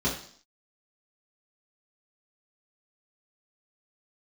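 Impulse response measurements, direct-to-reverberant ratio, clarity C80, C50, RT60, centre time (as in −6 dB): −8.5 dB, 10.5 dB, 7.0 dB, 0.55 s, 30 ms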